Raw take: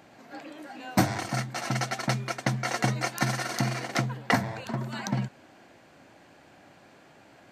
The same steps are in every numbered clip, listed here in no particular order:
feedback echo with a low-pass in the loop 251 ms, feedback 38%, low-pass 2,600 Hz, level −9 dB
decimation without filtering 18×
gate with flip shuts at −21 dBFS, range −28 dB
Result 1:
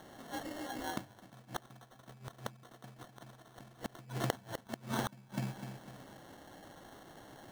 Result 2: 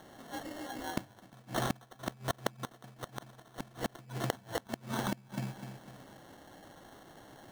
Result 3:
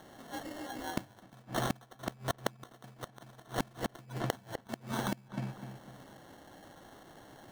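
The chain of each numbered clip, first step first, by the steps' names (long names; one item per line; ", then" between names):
feedback echo with a low-pass in the loop, then gate with flip, then decimation without filtering
feedback echo with a low-pass in the loop, then decimation without filtering, then gate with flip
decimation without filtering, then feedback echo with a low-pass in the loop, then gate with flip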